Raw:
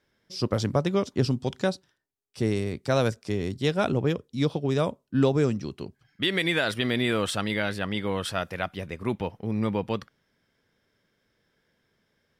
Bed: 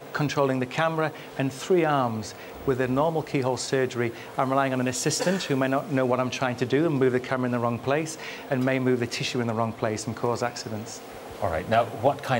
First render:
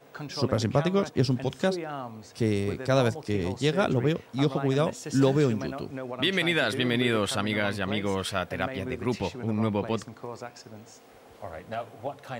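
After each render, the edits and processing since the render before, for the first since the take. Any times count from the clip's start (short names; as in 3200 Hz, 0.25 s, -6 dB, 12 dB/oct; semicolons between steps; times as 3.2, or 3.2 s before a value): add bed -12.5 dB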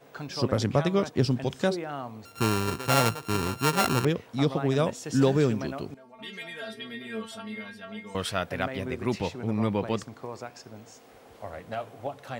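2.25–4.05 sample sorter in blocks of 32 samples; 5.94–8.15 metallic resonator 220 Hz, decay 0.25 s, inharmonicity 0.002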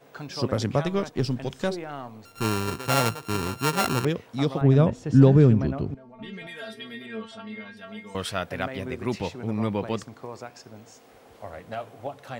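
0.85–2.45 half-wave gain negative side -3 dB; 4.61–6.47 RIAA curve playback; 7.06–7.77 air absorption 93 m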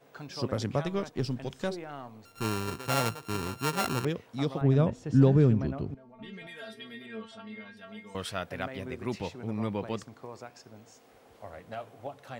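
gain -5.5 dB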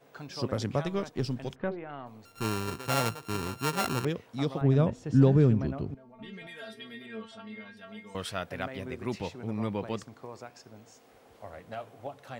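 1.54–2.05 LPF 1900 Hz -> 3900 Hz 24 dB/oct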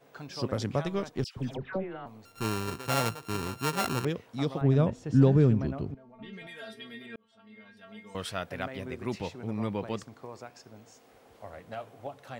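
1.24–2.06 dispersion lows, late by 0.125 s, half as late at 1400 Hz; 5.92–6.33 air absorption 84 m; 7.16–8.2 fade in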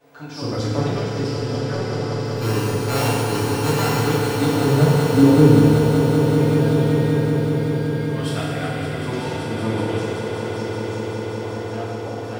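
swelling echo 0.19 s, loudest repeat 5, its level -9 dB; FDN reverb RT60 2.1 s, low-frequency decay 0.85×, high-frequency decay 0.9×, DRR -7.5 dB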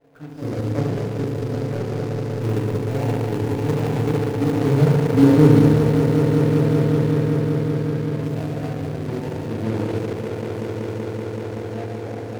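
median filter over 41 samples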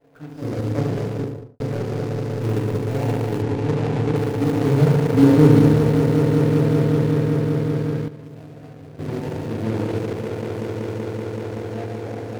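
1.09–1.6 studio fade out; 3.42–4.16 air absorption 54 m; 7.76–9.31 dip -13.5 dB, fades 0.32 s logarithmic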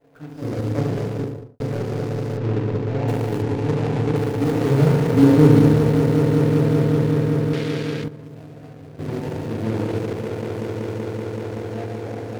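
2.37–3.08 air absorption 130 m; 4.43–5.19 doubler 24 ms -6.5 dB; 7.53–8.04 weighting filter D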